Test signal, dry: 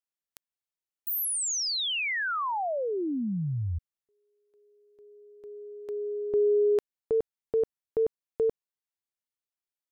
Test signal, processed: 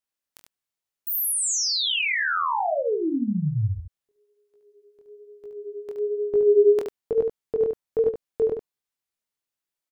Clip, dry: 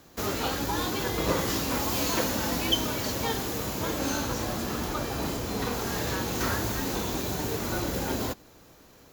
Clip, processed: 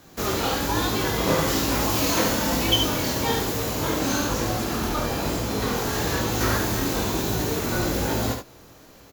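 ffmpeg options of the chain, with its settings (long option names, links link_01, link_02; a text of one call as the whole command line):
ffmpeg -i in.wav -af "flanger=delay=17.5:depth=7.9:speed=1.1,aecho=1:1:19|72:0.158|0.531,volume=7dB" out.wav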